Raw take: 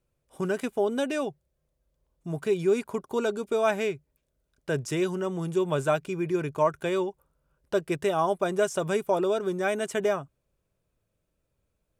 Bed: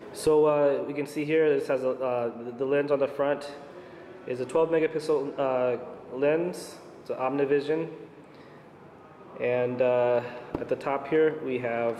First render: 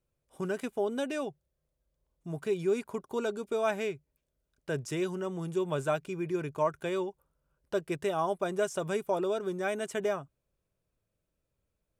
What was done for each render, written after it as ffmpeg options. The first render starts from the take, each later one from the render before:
-af "volume=0.562"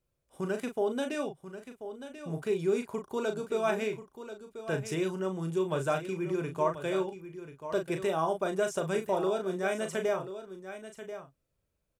-filter_complex "[0:a]asplit=2[s0][s1];[s1]adelay=37,volume=0.447[s2];[s0][s2]amix=inputs=2:normalize=0,aecho=1:1:1037:0.266"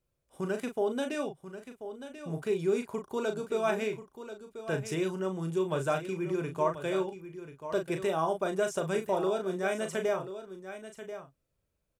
-af anull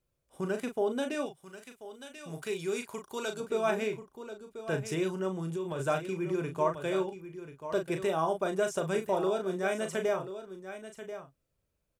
-filter_complex "[0:a]asettb=1/sr,asplit=3[s0][s1][s2];[s0]atrim=end=1.264[s3];[s1]atrim=start=1.26:end=3.4,asetpts=PTS-STARTPTS,afade=t=in:d=0.004:c=qsin,afade=t=out:st=2.136:d=0.004:c=qsin,tiltshelf=f=1300:g=-6.5[s4];[s2]atrim=start=3.396[s5];[s3][s4]acrossfade=d=0.004:c1=hsin:c2=qsin[s6];[s6][s5]acrossfade=d=0.004:c1=qsin:c2=hsin,asplit=3[s7][s8][s9];[s7]afade=t=out:st=5.38:d=0.02[s10];[s8]acompressor=threshold=0.0282:ratio=6:attack=3.2:release=140:knee=1:detection=peak,afade=t=in:st=5.38:d=0.02,afade=t=out:st=5.78:d=0.02[s11];[s9]afade=t=in:st=5.78:d=0.02[s12];[s10][s11][s12]amix=inputs=3:normalize=0"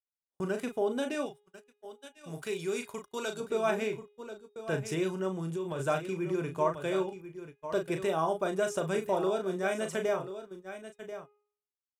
-af "agate=range=0.0112:threshold=0.00562:ratio=16:detection=peak,bandreject=f=414.8:t=h:w=4,bandreject=f=829.6:t=h:w=4,bandreject=f=1244.4:t=h:w=4,bandreject=f=1659.2:t=h:w=4,bandreject=f=2074:t=h:w=4,bandreject=f=2488.8:t=h:w=4,bandreject=f=2903.6:t=h:w=4,bandreject=f=3318.4:t=h:w=4,bandreject=f=3733.2:t=h:w=4"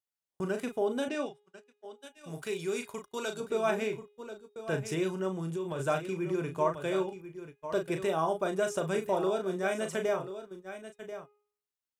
-filter_complex "[0:a]asettb=1/sr,asplit=3[s0][s1][s2];[s0]atrim=end=1.084[s3];[s1]atrim=start=1.08:end=2.01,asetpts=PTS-STARTPTS,afade=t=in:d=0.004:c=qsin,afade=t=out:st=0.926:d=0.004:c=qsin,highpass=140,lowpass=7000[s4];[s2]atrim=start=2.006[s5];[s3][s4]acrossfade=d=0.004:c1=hsin:c2=qsin[s6];[s6][s5]acrossfade=d=0.004:c1=qsin:c2=hsin"

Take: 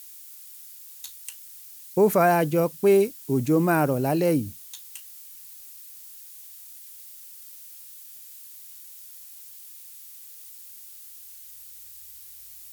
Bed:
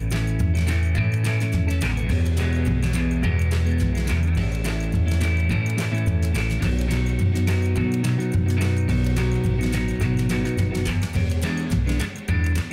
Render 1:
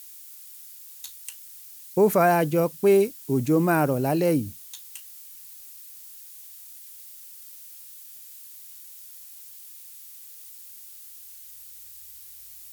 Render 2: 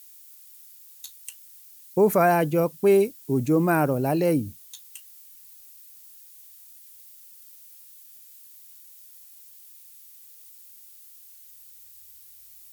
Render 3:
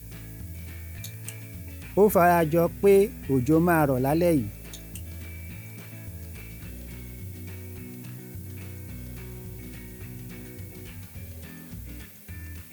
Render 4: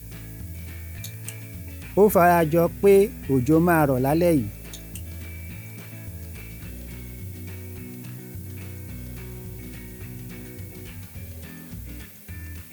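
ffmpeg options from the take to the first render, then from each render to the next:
-af anull
-af "afftdn=nr=6:nf=-45"
-filter_complex "[1:a]volume=0.112[s0];[0:a][s0]amix=inputs=2:normalize=0"
-af "volume=1.33"

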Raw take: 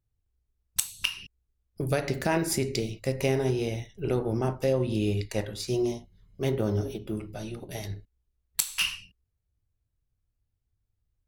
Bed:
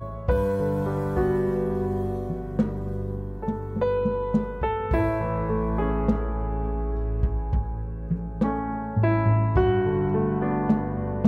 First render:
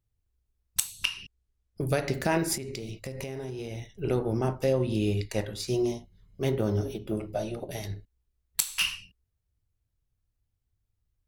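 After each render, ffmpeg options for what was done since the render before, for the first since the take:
-filter_complex "[0:a]asettb=1/sr,asplit=3[s0][s1][s2];[s0]atrim=end=1.054[s3];[s1]atrim=start=1.05:end=1.81,asetpts=PTS-STARTPTS,afade=t=in:d=0.004:c=qsin,afade=t=out:st=0.756:d=0.004:c=qsin,lowpass=10000[s4];[s2]atrim=start=1.806[s5];[s3][s4]acrossfade=d=0.004:c1=hsin:c2=qsin[s6];[s6][s5]acrossfade=d=0.004:c1=qsin:c2=hsin,asettb=1/sr,asplit=3[s7][s8][s9];[s7]atrim=end=2.554[s10];[s8]atrim=start=2.55:end=3.92,asetpts=PTS-STARTPTS,afade=t=in:d=0.004:c=qsin,afade=t=out:st=1.366:d=0.004:c=qsin,acompressor=threshold=0.0251:ratio=12:attack=3.2:release=140:knee=1:detection=peak[s11];[s9]atrim=start=3.916[s12];[s10][s11]acrossfade=d=0.004:c1=hsin:c2=qsin[s13];[s13][s12]acrossfade=d=0.004:c1=qsin:c2=hsin,asettb=1/sr,asplit=3[s14][s15][s16];[s14]atrim=end=7.114[s17];[s15]atrim=start=7.11:end=7.71,asetpts=PTS-STARTPTS,afade=t=in:d=0.004:c=qsin,afade=t=out:st=0.596:d=0.004:c=qsin,equalizer=f=610:w=1.7:g=12[s18];[s16]atrim=start=7.706[s19];[s17][s18]acrossfade=d=0.004:c1=hsin:c2=qsin[s20];[s20][s19]acrossfade=d=0.004:c1=qsin:c2=hsin"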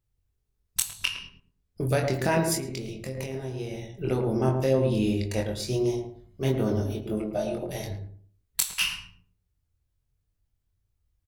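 -filter_complex "[0:a]asplit=2[s0][s1];[s1]adelay=23,volume=0.631[s2];[s0][s2]amix=inputs=2:normalize=0,asplit=2[s3][s4];[s4]adelay=110,lowpass=f=820:p=1,volume=0.631,asplit=2[s5][s6];[s6]adelay=110,lowpass=f=820:p=1,volume=0.3,asplit=2[s7][s8];[s8]adelay=110,lowpass=f=820:p=1,volume=0.3,asplit=2[s9][s10];[s10]adelay=110,lowpass=f=820:p=1,volume=0.3[s11];[s3][s5][s7][s9][s11]amix=inputs=5:normalize=0"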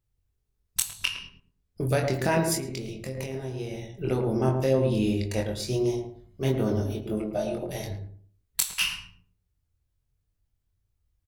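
-af anull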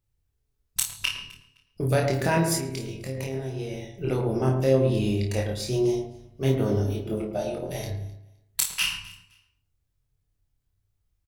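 -filter_complex "[0:a]asplit=2[s0][s1];[s1]adelay=30,volume=0.531[s2];[s0][s2]amix=inputs=2:normalize=0,aecho=1:1:258|516:0.0891|0.0187"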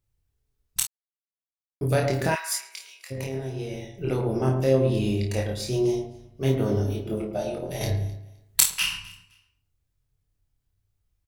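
-filter_complex "[0:a]asplit=3[s0][s1][s2];[s0]afade=t=out:st=2.34:d=0.02[s3];[s1]highpass=f=1100:w=0.5412,highpass=f=1100:w=1.3066,afade=t=in:st=2.34:d=0.02,afade=t=out:st=3.1:d=0.02[s4];[s2]afade=t=in:st=3.1:d=0.02[s5];[s3][s4][s5]amix=inputs=3:normalize=0,asplit=5[s6][s7][s8][s9][s10];[s6]atrim=end=0.87,asetpts=PTS-STARTPTS,afade=t=out:st=0.866:d=0.004:c=hsin[s11];[s7]atrim=start=0.87:end=1.81,asetpts=PTS-STARTPTS,volume=0[s12];[s8]atrim=start=1.81:end=7.812,asetpts=PTS-STARTPTS,afade=t=in:d=0.004:c=hsin[s13];[s9]atrim=start=7.808:end=8.702,asetpts=PTS-STARTPTS,volume=2.11[s14];[s10]atrim=start=8.698[s15];[s11][s12][s13]concat=n=3:v=0:a=1[s16];[s16][s14]acrossfade=d=0.004:c1=hsin:c2=hsin[s17];[s17][s15]acrossfade=d=0.004:c1=hsin:c2=hsin"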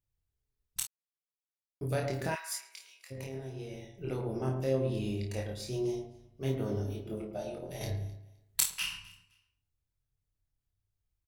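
-af "volume=0.335"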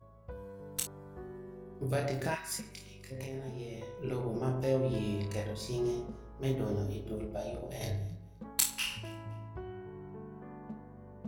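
-filter_complex "[1:a]volume=0.0708[s0];[0:a][s0]amix=inputs=2:normalize=0"

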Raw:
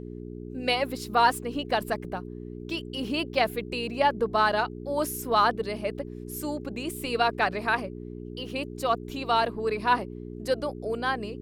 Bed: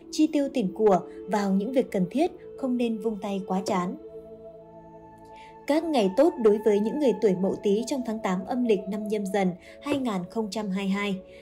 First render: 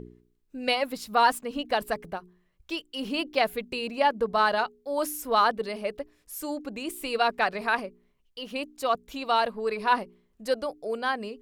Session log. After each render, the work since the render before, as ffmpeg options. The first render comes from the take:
-af "bandreject=f=60:t=h:w=4,bandreject=f=120:t=h:w=4,bandreject=f=180:t=h:w=4,bandreject=f=240:t=h:w=4,bandreject=f=300:t=h:w=4,bandreject=f=360:t=h:w=4,bandreject=f=420:t=h:w=4"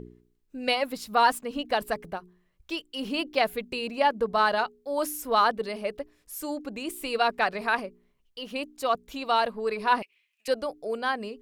-filter_complex "[0:a]asettb=1/sr,asplit=3[s0][s1][s2];[s0]atrim=end=10.024[s3];[s1]atrim=start=10.02:end=10.48,asetpts=PTS-STARTPTS,afade=t=in:d=0.004:c=qsin,afade=t=out:st=0.456:d=0.004:c=qsin,highpass=f=2500:t=q:w=10[s4];[s2]atrim=start=10.476[s5];[s3][s4]acrossfade=d=0.004:c1=hsin:c2=qsin[s6];[s6][s5]acrossfade=d=0.004:c1=qsin:c2=hsin"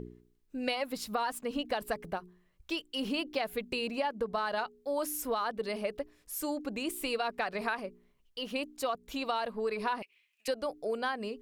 -af "alimiter=limit=0.178:level=0:latency=1:release=113,acompressor=threshold=0.0355:ratio=6"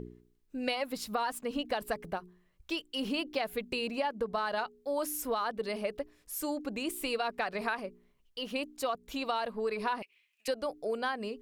-af anull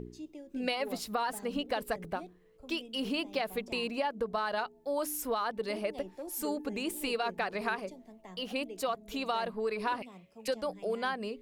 -filter_complex "[1:a]volume=0.0708[s0];[0:a][s0]amix=inputs=2:normalize=0"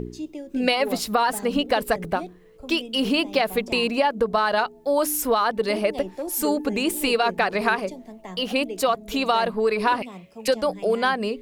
-af "volume=3.76"

